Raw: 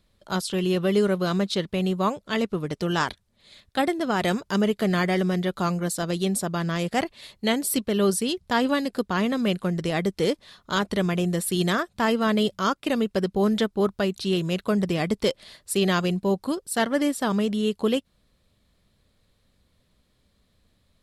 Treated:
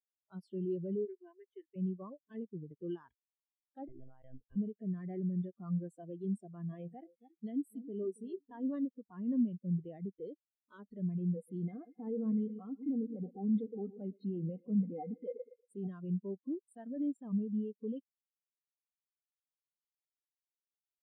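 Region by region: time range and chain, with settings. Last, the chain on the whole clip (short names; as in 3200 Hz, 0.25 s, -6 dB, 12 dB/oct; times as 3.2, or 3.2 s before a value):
1.05–1.76 low shelf 350 Hz -11.5 dB + fixed phaser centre 860 Hz, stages 8
3.88–4.56 low shelf 140 Hz -11 dB + notch 1100 Hz, Q 14 + monotone LPC vocoder at 8 kHz 130 Hz
6.35–8.67 compressor 2:1, threshold -25 dBFS + echo with dull and thin repeats by turns 0.276 s, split 1600 Hz, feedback 52%, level -8 dB
11.36–15.87 G.711 law mismatch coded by A + small resonant body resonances 270/480/740/2100 Hz, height 17 dB, ringing for 60 ms + feedback echo 0.117 s, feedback 52%, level -18.5 dB
whole clip: spectral noise reduction 15 dB; limiter -23 dBFS; spectral expander 2.5:1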